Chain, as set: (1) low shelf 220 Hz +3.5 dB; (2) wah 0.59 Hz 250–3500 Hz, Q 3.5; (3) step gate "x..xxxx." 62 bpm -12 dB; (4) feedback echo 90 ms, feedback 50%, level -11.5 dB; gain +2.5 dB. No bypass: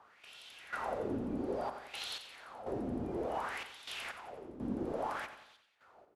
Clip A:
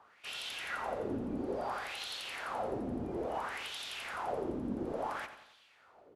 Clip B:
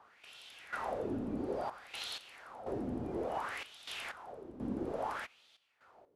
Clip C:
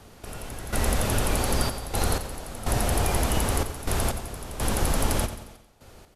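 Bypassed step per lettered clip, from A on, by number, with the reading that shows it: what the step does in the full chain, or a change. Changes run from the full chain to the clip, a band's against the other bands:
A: 3, 125 Hz band -2.0 dB; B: 4, echo-to-direct -10.5 dB to none; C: 2, 8 kHz band +16.5 dB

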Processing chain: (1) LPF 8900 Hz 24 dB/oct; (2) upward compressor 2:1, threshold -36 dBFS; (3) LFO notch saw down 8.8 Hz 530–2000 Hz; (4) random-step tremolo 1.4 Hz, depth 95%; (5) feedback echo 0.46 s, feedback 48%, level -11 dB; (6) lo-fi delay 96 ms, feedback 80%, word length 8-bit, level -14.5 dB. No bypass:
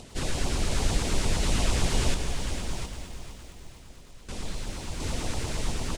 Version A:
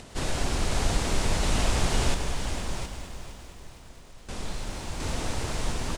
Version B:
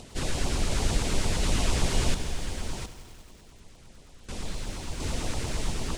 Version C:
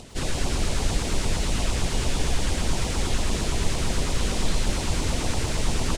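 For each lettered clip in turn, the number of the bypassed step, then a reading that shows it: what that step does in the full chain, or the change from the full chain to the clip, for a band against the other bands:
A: 3, 1 kHz band +3.0 dB; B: 5, momentary loudness spread change -5 LU; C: 4, momentary loudness spread change -18 LU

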